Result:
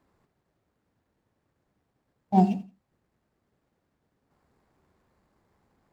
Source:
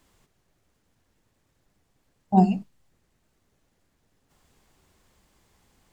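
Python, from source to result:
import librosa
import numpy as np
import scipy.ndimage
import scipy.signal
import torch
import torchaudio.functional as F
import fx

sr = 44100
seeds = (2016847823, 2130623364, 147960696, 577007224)

y = scipy.ndimage.median_filter(x, 15, mode='constant')
y = fx.highpass(y, sr, hz=100.0, slope=6)
y = fx.echo_feedback(y, sr, ms=85, feedback_pct=24, wet_db=-17.5)
y = F.gain(torch.from_numpy(y), -1.5).numpy()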